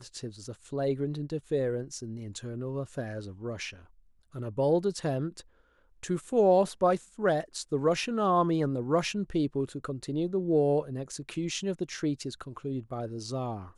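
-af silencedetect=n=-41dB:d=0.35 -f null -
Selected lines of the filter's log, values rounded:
silence_start: 3.74
silence_end: 4.35 | silence_duration: 0.61
silence_start: 5.41
silence_end: 6.03 | silence_duration: 0.62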